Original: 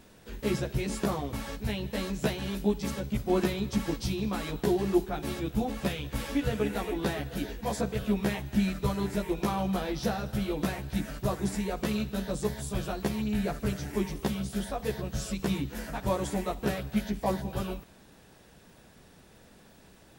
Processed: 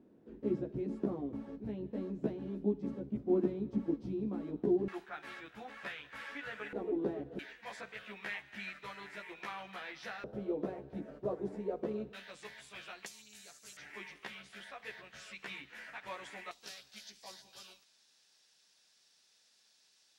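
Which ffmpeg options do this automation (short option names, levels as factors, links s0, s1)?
-af "asetnsamples=n=441:p=0,asendcmd='4.88 bandpass f 1700;6.73 bandpass f 370;7.39 bandpass f 2000;10.24 bandpass f 440;12.13 bandpass f 2300;13.06 bandpass f 6700;13.77 bandpass f 2100;16.51 bandpass f 5100',bandpass=f=300:t=q:w=2.2:csg=0"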